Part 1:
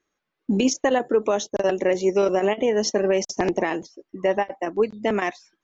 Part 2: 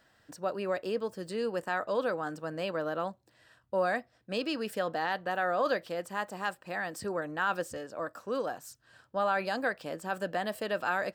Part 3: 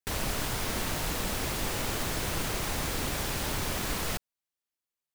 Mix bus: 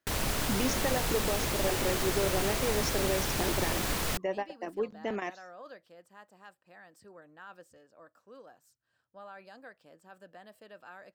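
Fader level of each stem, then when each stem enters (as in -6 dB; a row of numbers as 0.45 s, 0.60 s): -11.5 dB, -19.0 dB, +0.5 dB; 0.00 s, 0.00 s, 0.00 s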